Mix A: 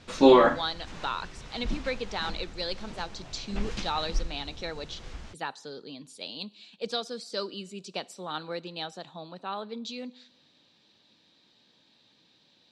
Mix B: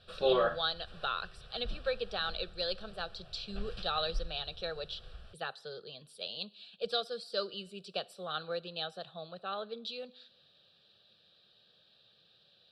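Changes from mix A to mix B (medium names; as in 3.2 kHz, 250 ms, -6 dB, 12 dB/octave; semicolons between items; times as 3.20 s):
background -7.0 dB; master: add static phaser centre 1.4 kHz, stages 8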